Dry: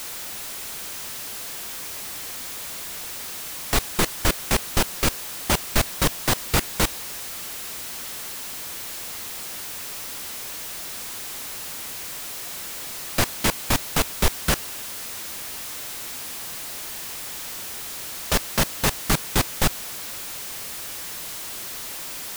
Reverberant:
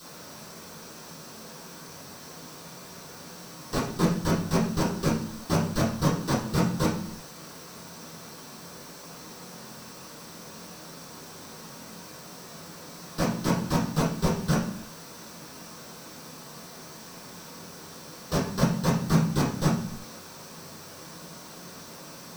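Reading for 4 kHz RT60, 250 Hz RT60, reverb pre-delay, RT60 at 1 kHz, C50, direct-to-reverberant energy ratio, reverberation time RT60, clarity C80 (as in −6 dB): 0.50 s, can't be measured, 3 ms, 0.55 s, 5.5 dB, −12.0 dB, 0.55 s, 9.5 dB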